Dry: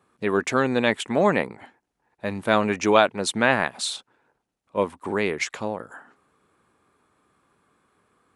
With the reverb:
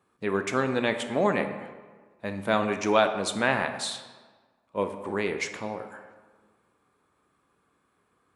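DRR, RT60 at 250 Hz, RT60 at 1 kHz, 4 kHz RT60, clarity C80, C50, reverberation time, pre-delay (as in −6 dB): 7.0 dB, 1.5 s, 1.5 s, 0.95 s, 10.5 dB, 9.0 dB, 1.5 s, 8 ms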